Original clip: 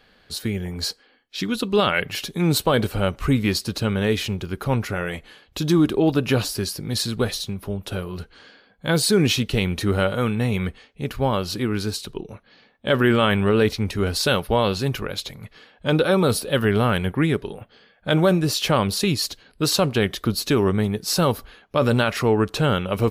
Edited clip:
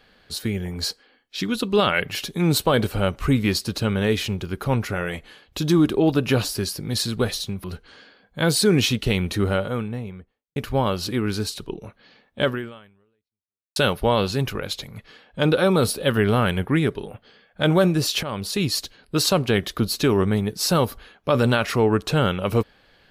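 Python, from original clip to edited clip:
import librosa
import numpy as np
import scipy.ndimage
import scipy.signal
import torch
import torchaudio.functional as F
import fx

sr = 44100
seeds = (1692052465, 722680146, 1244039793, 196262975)

y = fx.studio_fade_out(x, sr, start_s=9.69, length_s=1.34)
y = fx.edit(y, sr, fx.cut(start_s=7.64, length_s=0.47),
    fx.fade_out_span(start_s=12.9, length_s=1.33, curve='exp'),
    fx.fade_in_from(start_s=18.7, length_s=0.5, floor_db=-14.0), tone=tone)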